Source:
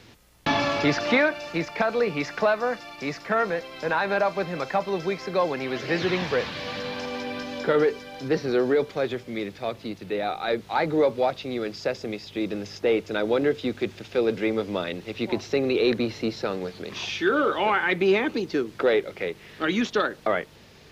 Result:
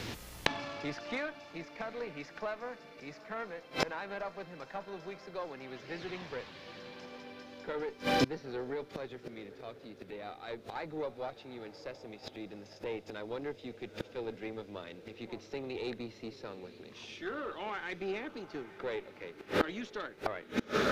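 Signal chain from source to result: diffused feedback echo 0.851 s, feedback 49%, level -14.5 dB; added harmonics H 4 -19 dB, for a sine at -10 dBFS; flipped gate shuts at -27 dBFS, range -27 dB; gain +10 dB

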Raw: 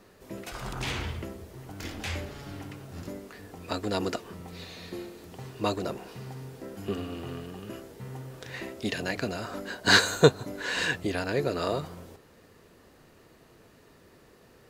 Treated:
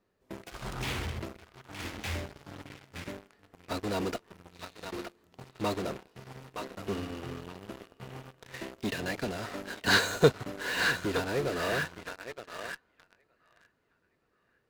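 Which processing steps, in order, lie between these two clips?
high shelf 5600 Hz -7 dB; narrowing echo 0.918 s, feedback 41%, band-pass 1700 Hz, level -4.5 dB; in parallel at -9 dB: fuzz box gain 41 dB, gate -38 dBFS; on the sum: upward expander 1.5:1, over -39 dBFS; gain -5 dB

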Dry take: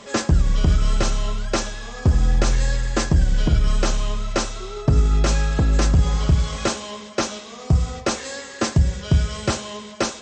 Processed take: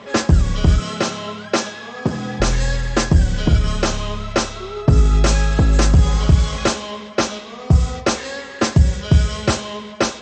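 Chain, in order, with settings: HPF 44 Hz 24 dB/oct, from 0.8 s 150 Hz, from 2.4 s 45 Hz; low-pass opened by the level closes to 3000 Hz, open at -12.5 dBFS; gain +4.5 dB

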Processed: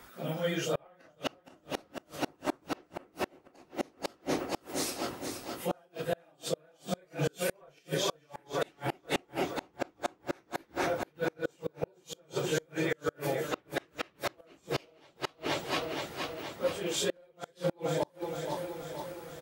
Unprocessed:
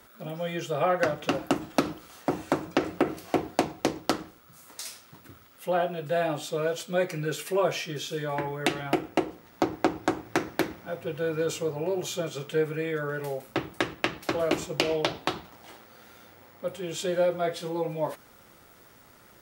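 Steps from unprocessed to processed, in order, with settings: phase scrambler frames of 0.1 s; harmonic-percussive split harmonic -5 dB; on a send: feedback echo 0.472 s, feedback 58%, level -8 dB; on the sum: added harmonics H 2 -14 dB, 8 -40 dB, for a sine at -12 dBFS; flipped gate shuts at -23 dBFS, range -35 dB; gain +4.5 dB

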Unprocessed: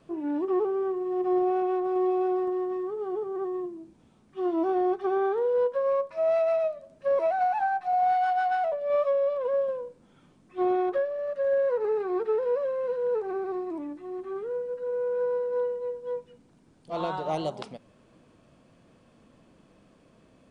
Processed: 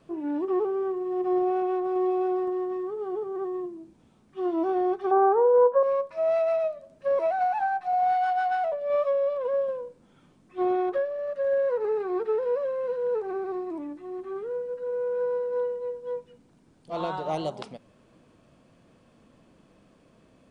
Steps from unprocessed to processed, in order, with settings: 5.11–5.83 EQ curve 270 Hz 0 dB, 950 Hz +12 dB, 3800 Hz -19 dB

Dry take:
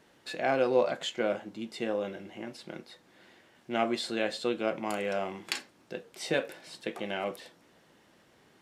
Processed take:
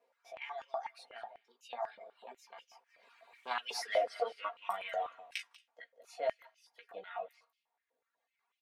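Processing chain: Doppler pass-by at 3.78, 22 m/s, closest 2.4 m; chorus 0.4 Hz, delay 15 ms, depth 2.3 ms; formant shift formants +4 st; high shelf 2300 Hz -9.5 dB; echo 0.19 s -10.5 dB; reverb removal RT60 1.7 s; compressor 20:1, threshold -51 dBFS, peak gain reduction 16.5 dB; comb 4.3 ms, depth 70%; stepped high-pass 8.1 Hz 530–2800 Hz; gain +17 dB

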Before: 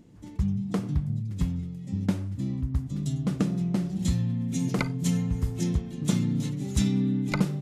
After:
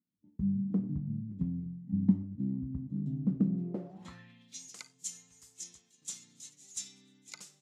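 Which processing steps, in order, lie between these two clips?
expander -31 dBFS; band-pass sweep 220 Hz -> 7000 Hz, 3.53–4.68; 1.66–2.23 comb 1 ms, depth 72%

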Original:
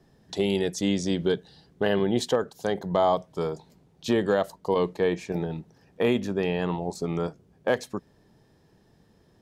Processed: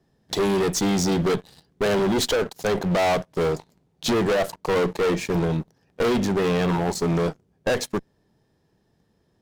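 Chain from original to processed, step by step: sample leveller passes 3; one-sided clip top -23 dBFS, bottom -16 dBFS

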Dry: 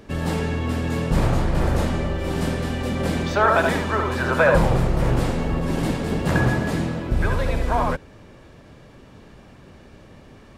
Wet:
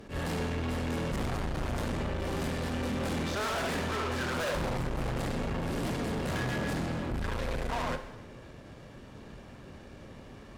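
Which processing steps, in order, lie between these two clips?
tube stage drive 31 dB, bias 0.55; non-linear reverb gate 0.37 s falling, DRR 8.5 dB; attack slew limiter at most 200 dB/s

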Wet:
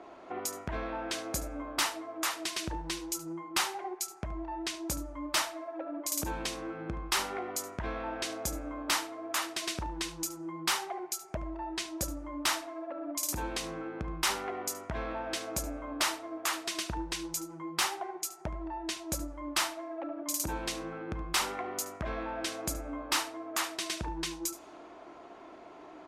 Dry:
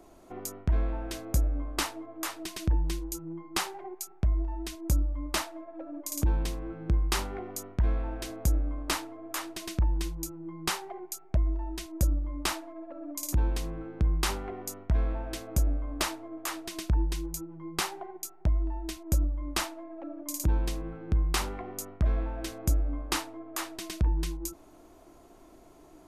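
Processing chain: HPF 850 Hz 6 dB/oct; low-pass opened by the level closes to 2400 Hz, open at -34.5 dBFS; high shelf 8800 Hz -4.5 dB; in parallel at +2 dB: compressor, threshold -48 dBFS, peak gain reduction 19 dB; on the sum: soft clip -26.5 dBFS, distortion -13 dB; echo 73 ms -15.5 dB; on a send at -18 dB: reverb RT60 0.80 s, pre-delay 7 ms; on the sum: gain +5 dB; MP3 64 kbps 44100 Hz

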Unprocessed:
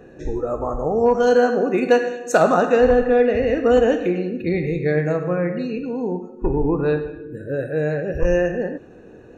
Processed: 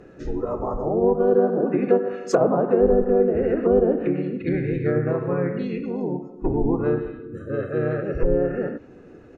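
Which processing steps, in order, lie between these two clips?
treble ducked by the level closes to 750 Hz, closed at -13 dBFS; harmoniser -4 st -2 dB; gain -4 dB

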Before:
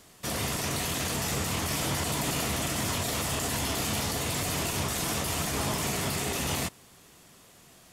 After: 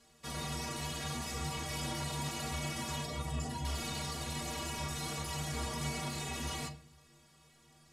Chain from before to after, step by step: 3.05–3.65 spectral contrast raised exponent 1.7; Bessel low-pass 9300 Hz, order 2; metallic resonator 70 Hz, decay 0.39 s, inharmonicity 0.03; on a send: reverb RT60 0.50 s, pre-delay 4 ms, DRR 7 dB

